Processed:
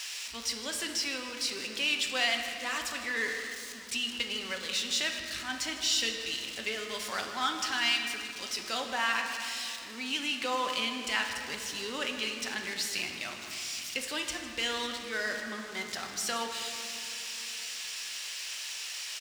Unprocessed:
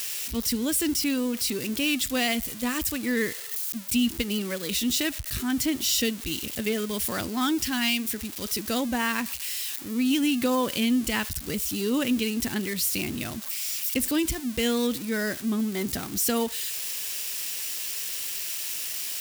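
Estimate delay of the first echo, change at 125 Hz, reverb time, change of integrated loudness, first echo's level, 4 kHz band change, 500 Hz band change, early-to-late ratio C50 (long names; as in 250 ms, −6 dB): 155 ms, −17.5 dB, 2.7 s, −5.5 dB, −14.5 dB, −0.5 dB, −8.5 dB, 4.5 dB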